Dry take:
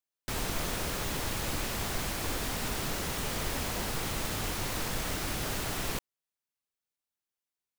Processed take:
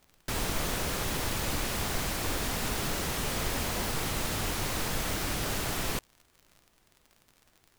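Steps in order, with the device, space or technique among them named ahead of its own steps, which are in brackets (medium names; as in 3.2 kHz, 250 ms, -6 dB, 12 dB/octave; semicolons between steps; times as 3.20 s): vinyl LP (wow and flutter; crackle 59 per s -45 dBFS; pink noise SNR 35 dB); trim +2 dB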